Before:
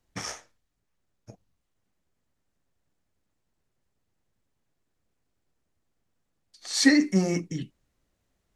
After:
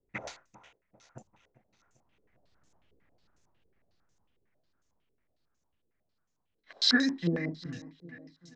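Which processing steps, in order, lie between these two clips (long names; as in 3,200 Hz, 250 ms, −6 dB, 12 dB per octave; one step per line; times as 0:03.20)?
source passing by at 0:02.81, 34 m/s, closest 22 metres
repeating echo 395 ms, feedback 54%, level −16.5 dB
low-pass on a step sequencer 11 Hz 440–6,500 Hz
level +7.5 dB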